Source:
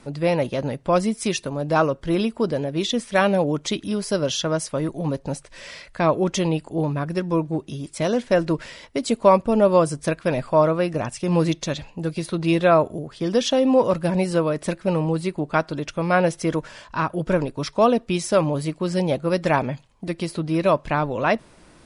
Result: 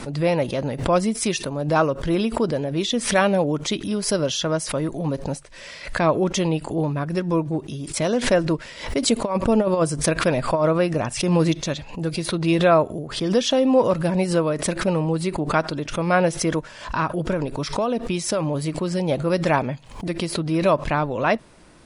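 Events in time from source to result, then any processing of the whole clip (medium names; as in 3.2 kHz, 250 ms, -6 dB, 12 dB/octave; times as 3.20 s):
8.86–11.60 s: compressor with a negative ratio -17 dBFS, ratio -0.5
17.30–19.08 s: compression, threshold -18 dBFS
whole clip: swell ahead of each attack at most 100 dB/s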